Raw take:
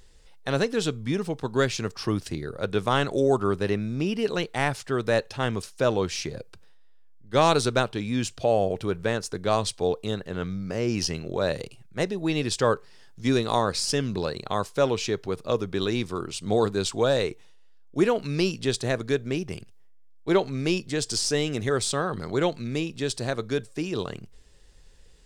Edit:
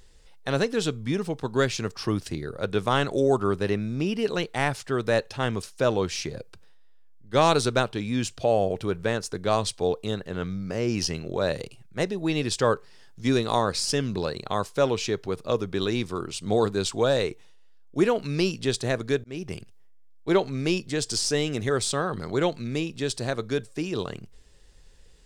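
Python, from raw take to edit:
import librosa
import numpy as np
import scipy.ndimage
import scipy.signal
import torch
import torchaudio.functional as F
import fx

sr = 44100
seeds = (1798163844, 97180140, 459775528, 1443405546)

y = fx.edit(x, sr, fx.fade_in_span(start_s=19.24, length_s=0.25), tone=tone)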